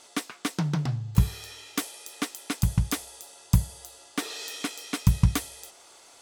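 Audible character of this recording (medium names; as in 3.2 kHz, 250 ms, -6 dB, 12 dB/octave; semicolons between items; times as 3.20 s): noise floor -53 dBFS; spectral tilt -4.5 dB/octave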